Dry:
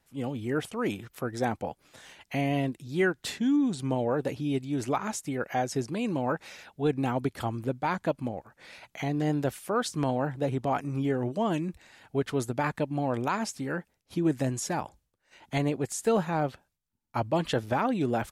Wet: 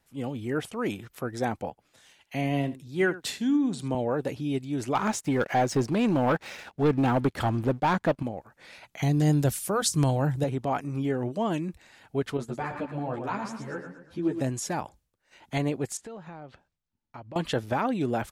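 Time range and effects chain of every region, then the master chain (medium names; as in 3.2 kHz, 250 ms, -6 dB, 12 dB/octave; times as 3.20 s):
1.70–3.95 s: delay 78 ms -15 dB + three bands expanded up and down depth 40%
4.95–8.23 s: treble shelf 6.1 kHz -10 dB + waveshaping leveller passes 2
9.02–10.44 s: tone controls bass +10 dB, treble +12 dB + band-stop 240 Hz, Q 5
12.37–14.41 s: low-pass 3.1 kHz 6 dB/octave + feedback delay 116 ms, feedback 44%, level -7.5 dB + three-phase chorus
15.97–17.36 s: compression 5:1, threshold -40 dBFS + distance through air 88 m
whole clip: none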